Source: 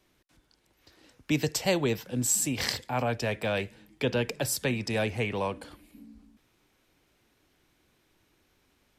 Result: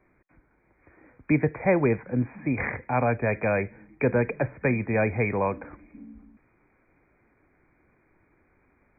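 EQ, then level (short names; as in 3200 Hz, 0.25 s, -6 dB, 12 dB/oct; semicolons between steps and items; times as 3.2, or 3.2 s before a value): brick-wall FIR low-pass 2500 Hz; +5.0 dB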